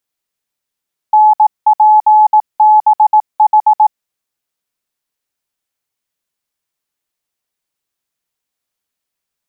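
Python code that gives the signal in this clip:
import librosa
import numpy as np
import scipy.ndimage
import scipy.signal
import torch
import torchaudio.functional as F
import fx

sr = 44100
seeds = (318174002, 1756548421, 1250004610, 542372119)

y = fx.morse(sr, text='NPBH', wpm=18, hz=855.0, level_db=-3.5)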